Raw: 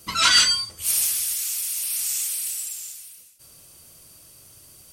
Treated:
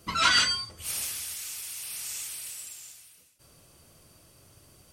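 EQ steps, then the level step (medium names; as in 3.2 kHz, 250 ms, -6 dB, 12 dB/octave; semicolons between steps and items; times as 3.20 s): treble shelf 3 kHz -10 dB; peaking EQ 14 kHz -3.5 dB 0.98 oct; 0.0 dB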